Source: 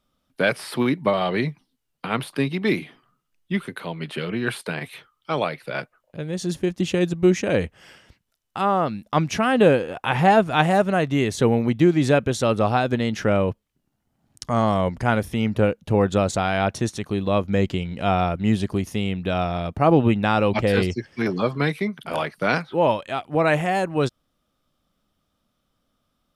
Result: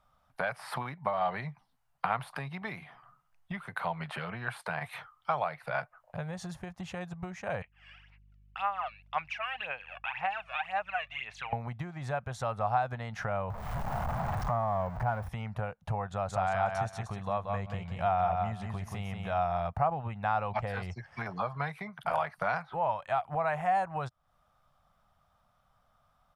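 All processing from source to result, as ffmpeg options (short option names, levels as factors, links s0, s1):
-filter_complex "[0:a]asettb=1/sr,asplit=3[s0][s1][s2];[s0]atrim=end=7.624[s3];[s1]atrim=start=7.62:end=11.53,asetpts=PTS-STARTPTS,afade=t=in:d=0.004:c=qsin,afade=t=out:st=3.906:d=0.004:c=qsin,aphaser=in_gain=1:out_gain=1:delay=1.8:decay=0.69:speed=1.9:type=sinusoidal,bandpass=f=2600:t=q:w=4.7,aeval=exprs='val(0)+0.000891*(sin(2*PI*50*n/s)+sin(2*PI*2*50*n/s)/2+sin(2*PI*3*50*n/s)/3+sin(2*PI*4*50*n/s)/4+sin(2*PI*5*50*n/s)/5)':c=same[s4];[s2]atrim=start=11.526[s5];[s3][s4]acrossfade=d=0.004:c1=hsin:c2=qsin[s6];[s6][s5]acrossfade=d=0.004:c1=qsin:c2=hsin,asettb=1/sr,asplit=3[s7][s8][s9];[s7]atrim=end=13.504[s10];[s8]atrim=start=13.5:end=15.29,asetpts=PTS-STARTPTS,afade=t=in:d=0.004:c=qsin,afade=t=out:st=1.786:d=0.004:c=qsin,aeval=exprs='val(0)+0.5*0.0596*sgn(val(0))':c=same,deesser=0.9[s11];[s9]atrim=start=15.286[s12];[s10][s11]acrossfade=d=0.004:c1=hsin:c2=qsin[s13];[s13][s12]acrossfade=d=0.004:c1=qsin:c2=hsin,asettb=1/sr,asplit=3[s14][s15][s16];[s14]atrim=end=16.114[s17];[s15]atrim=start=16.11:end=19.39,asetpts=PTS-STARTPTS,afade=t=in:d=0.004:c=qsin,afade=t=out:st=3.276:d=0.004:c=qsin,acompressor=mode=upward:threshold=0.0355:ratio=2.5:attack=3.2:release=140:knee=2.83:detection=peak,aecho=1:1:180|360|540:0.501|0.0952|0.0181,atrim=end_sample=144648[s18];[s16]atrim=start=19.386[s19];[s17][s18]acrossfade=d=0.004:c1=hsin:c2=qsin[s20];[s20][s19]acrossfade=d=0.004:c1=qsin:c2=hsin,acompressor=threshold=0.02:ratio=5,firequalizer=gain_entry='entry(130,0);entry(300,-20);entry(720,8);entry(3000,-8)':delay=0.05:min_phase=1,volume=1.41"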